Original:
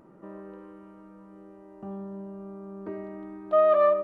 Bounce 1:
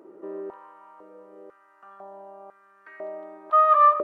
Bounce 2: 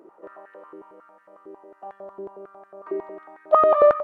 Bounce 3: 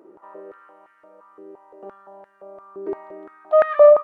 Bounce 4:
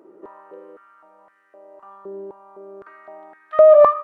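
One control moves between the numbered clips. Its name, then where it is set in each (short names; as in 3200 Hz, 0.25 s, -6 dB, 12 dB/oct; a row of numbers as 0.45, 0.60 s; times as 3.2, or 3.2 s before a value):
stepped high-pass, rate: 2, 11, 5.8, 3.9 Hz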